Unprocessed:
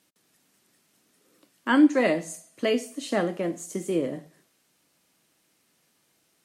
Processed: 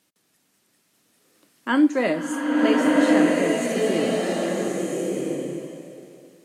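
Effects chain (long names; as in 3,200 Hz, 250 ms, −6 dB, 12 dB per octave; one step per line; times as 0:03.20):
slow-attack reverb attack 1,310 ms, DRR −3.5 dB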